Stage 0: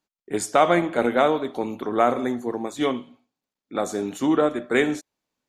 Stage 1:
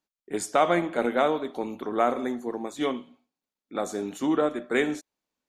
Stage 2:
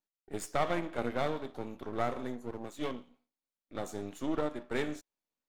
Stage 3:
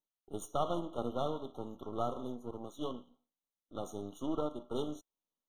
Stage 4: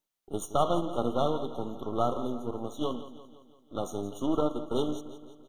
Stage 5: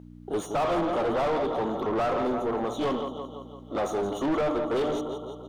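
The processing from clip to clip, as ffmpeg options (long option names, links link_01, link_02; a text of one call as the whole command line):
ffmpeg -i in.wav -af "equalizer=frequency=120:width_type=o:width=0.33:gain=-9.5,volume=-4dB" out.wav
ffmpeg -i in.wav -af "aeval=exprs='if(lt(val(0),0),0.251*val(0),val(0))':channel_layout=same,volume=-5.5dB" out.wav
ffmpeg -i in.wav -af "afftfilt=real='re*eq(mod(floor(b*sr/1024/1400),2),0)':imag='im*eq(mod(floor(b*sr/1024/1400),2),0)':win_size=1024:overlap=0.75,volume=-2.5dB" out.wav
ffmpeg -i in.wav -af "aecho=1:1:170|340|510|680|850|1020:0.2|0.11|0.0604|0.0332|0.0183|0.01,volume=7.5dB" out.wav
ffmpeg -i in.wav -filter_complex "[0:a]bandreject=frequency=60:width_type=h:width=6,bandreject=frequency=120:width_type=h:width=6,bandreject=frequency=180:width_type=h:width=6,bandreject=frequency=240:width_type=h:width=6,bandreject=frequency=300:width_type=h:width=6,aeval=exprs='val(0)+0.00316*(sin(2*PI*60*n/s)+sin(2*PI*2*60*n/s)/2+sin(2*PI*3*60*n/s)/3+sin(2*PI*4*60*n/s)/4+sin(2*PI*5*60*n/s)/5)':channel_layout=same,asplit=2[link_01][link_02];[link_02]highpass=frequency=720:poles=1,volume=33dB,asoftclip=type=tanh:threshold=-11dB[link_03];[link_01][link_03]amix=inputs=2:normalize=0,lowpass=frequency=1100:poles=1,volume=-6dB,volume=-6dB" out.wav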